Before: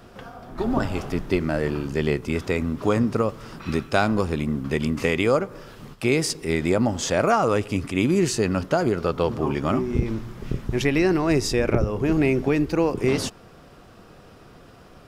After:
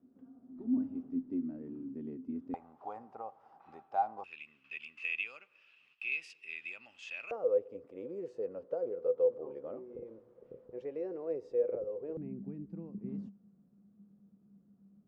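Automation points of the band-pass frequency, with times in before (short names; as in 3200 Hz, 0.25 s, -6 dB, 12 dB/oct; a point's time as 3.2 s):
band-pass, Q 18
260 Hz
from 2.54 s 790 Hz
from 4.24 s 2600 Hz
from 7.31 s 500 Hz
from 12.17 s 200 Hz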